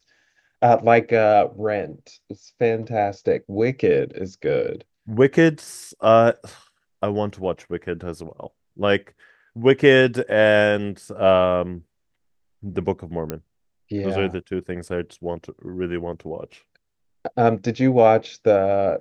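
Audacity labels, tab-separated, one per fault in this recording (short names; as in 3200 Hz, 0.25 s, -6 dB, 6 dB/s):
13.300000	13.300000	pop -12 dBFS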